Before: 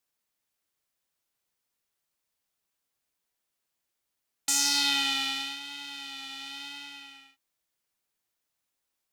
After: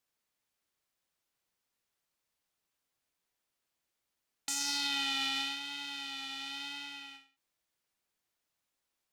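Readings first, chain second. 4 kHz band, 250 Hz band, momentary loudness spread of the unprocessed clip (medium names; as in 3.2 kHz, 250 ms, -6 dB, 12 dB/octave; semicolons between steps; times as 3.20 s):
-5.5 dB, -4.5 dB, 17 LU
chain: treble shelf 7.6 kHz -5.5 dB; peak limiter -20.5 dBFS, peak gain reduction 8.5 dB; endings held to a fixed fall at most 150 dB/s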